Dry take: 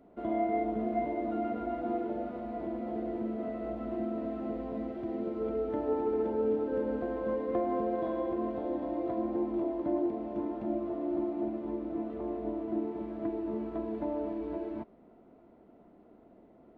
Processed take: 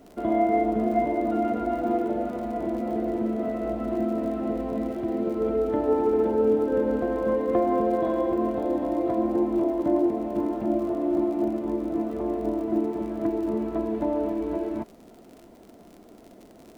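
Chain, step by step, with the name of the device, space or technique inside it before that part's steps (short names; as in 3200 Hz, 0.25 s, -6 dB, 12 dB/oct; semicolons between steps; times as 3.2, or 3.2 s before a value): vinyl LP (crackle 62/s -47 dBFS; pink noise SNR 39 dB); gain +8 dB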